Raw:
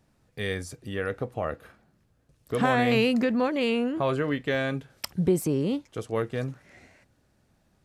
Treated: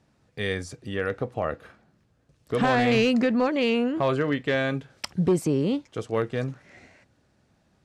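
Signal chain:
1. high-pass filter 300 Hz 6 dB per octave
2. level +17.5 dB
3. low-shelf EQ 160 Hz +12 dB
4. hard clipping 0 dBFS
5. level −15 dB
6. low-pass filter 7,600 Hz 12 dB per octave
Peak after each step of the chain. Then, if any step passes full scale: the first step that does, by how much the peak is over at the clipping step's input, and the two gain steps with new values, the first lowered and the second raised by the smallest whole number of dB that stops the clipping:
−10.0, +7.5, +8.0, 0.0, −15.0, −14.5 dBFS
step 2, 8.0 dB
step 2 +9.5 dB, step 5 −7 dB

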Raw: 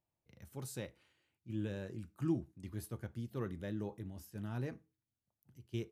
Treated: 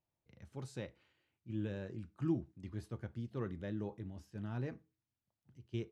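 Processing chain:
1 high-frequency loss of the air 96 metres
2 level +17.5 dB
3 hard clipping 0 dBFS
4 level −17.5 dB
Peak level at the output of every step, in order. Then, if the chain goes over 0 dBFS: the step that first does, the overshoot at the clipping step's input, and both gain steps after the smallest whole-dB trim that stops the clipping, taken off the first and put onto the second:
−23.5, −6.0, −6.0, −23.5 dBFS
no step passes full scale

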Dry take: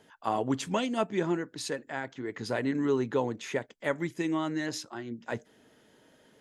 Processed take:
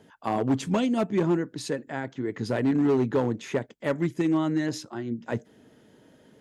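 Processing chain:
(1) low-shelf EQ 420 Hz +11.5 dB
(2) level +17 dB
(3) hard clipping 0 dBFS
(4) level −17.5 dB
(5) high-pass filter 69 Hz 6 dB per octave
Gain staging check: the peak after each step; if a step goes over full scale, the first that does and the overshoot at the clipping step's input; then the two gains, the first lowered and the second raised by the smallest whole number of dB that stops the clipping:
−10.0, +7.0, 0.0, −17.5, −15.0 dBFS
step 2, 7.0 dB
step 2 +10 dB, step 4 −10.5 dB

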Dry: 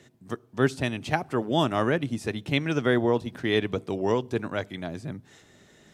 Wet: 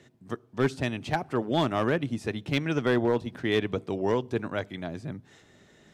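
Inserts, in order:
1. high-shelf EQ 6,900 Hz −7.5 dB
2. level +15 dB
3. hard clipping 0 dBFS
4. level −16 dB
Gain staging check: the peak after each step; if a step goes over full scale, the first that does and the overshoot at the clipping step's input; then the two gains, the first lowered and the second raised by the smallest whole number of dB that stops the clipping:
−6.5, +8.5, 0.0, −16.0 dBFS
step 2, 8.5 dB
step 2 +6 dB, step 4 −7 dB

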